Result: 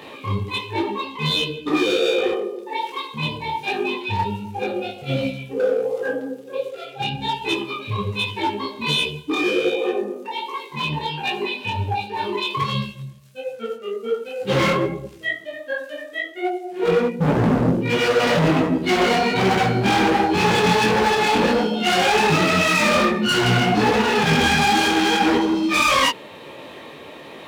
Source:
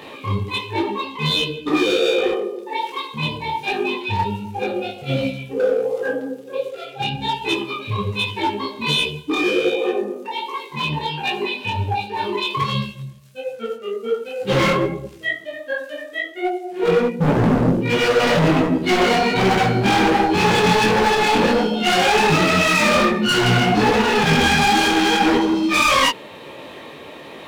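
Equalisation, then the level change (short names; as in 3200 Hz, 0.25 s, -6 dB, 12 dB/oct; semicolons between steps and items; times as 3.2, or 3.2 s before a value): HPF 44 Hz; -1.5 dB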